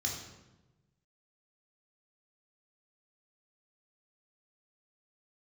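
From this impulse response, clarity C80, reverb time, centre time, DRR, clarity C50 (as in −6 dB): 6.5 dB, 1.1 s, 42 ms, −1.5 dB, 4.0 dB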